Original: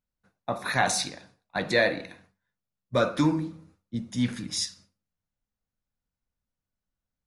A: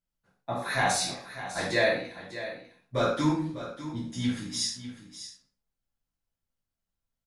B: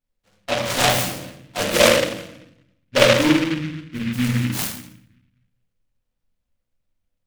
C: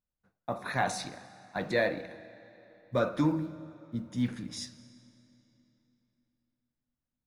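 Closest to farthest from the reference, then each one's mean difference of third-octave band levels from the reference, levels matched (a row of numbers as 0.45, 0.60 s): C, A, B; 4.0, 5.5, 11.0 dB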